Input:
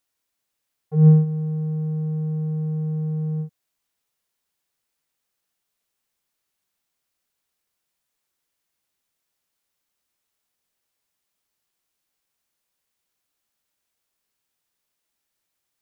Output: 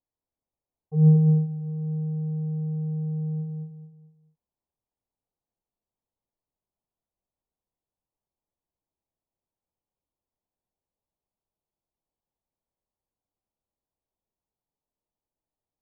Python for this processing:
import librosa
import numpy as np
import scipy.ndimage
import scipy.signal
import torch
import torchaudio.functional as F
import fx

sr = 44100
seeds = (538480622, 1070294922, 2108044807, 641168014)

y = scipy.signal.sosfilt(scipy.signal.butter(6, 980.0, 'lowpass', fs=sr, output='sos'), x)
y = fx.low_shelf(y, sr, hz=96.0, db=9.0)
y = fx.echo_feedback(y, sr, ms=217, feedback_pct=33, wet_db=-4)
y = F.gain(torch.from_numpy(y), -6.0).numpy()